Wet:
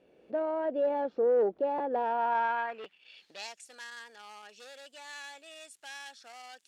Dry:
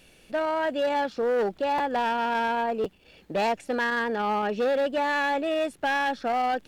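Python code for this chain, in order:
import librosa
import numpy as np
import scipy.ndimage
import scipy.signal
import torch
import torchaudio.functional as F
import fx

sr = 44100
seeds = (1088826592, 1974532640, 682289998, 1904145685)

y = fx.recorder_agc(x, sr, target_db=-24.5, rise_db_per_s=13.0, max_gain_db=30)
y = fx.filter_sweep_bandpass(y, sr, from_hz=450.0, to_hz=7700.0, start_s=1.91, end_s=3.61, q=1.6)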